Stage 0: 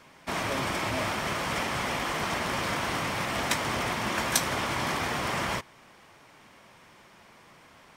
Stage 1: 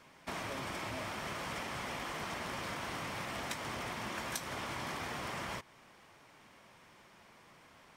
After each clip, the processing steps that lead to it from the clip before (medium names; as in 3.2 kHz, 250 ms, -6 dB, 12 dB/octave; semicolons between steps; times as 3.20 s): compression 3:1, threshold -33 dBFS, peak gain reduction 10.5 dB; trim -5.5 dB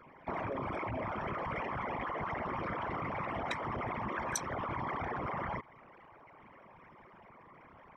resonances exaggerated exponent 3; trim +3.5 dB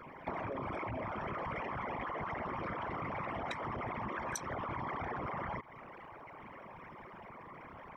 compression 5:1, threshold -43 dBFS, peak gain reduction 12.5 dB; trim +6 dB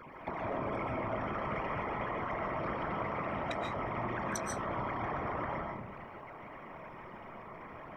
algorithmic reverb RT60 0.68 s, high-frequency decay 0.25×, pre-delay 100 ms, DRR 0.5 dB